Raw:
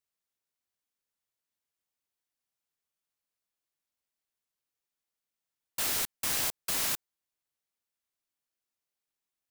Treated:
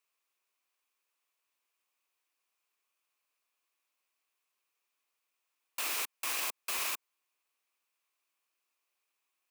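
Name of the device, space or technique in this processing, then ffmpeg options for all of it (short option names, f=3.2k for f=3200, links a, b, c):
laptop speaker: -af "highpass=f=300:w=0.5412,highpass=f=300:w=1.3066,equalizer=f=1.1k:t=o:w=0.41:g=9,equalizer=f=2.5k:t=o:w=0.36:g=10,alimiter=level_in=4.5dB:limit=-24dB:level=0:latency=1:release=90,volume=-4.5dB,volume=4dB"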